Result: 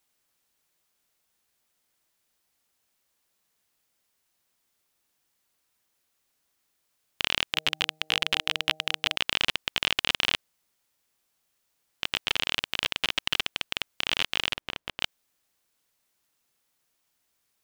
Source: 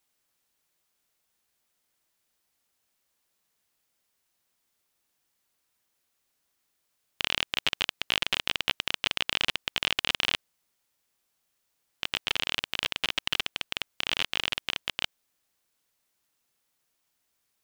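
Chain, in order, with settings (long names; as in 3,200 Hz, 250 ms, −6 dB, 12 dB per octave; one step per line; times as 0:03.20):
0:07.52–0:09.16: hum removal 156.2 Hz, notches 5
0:14.53–0:15.00: high-shelf EQ 2,100 Hz −11 dB
level +1.5 dB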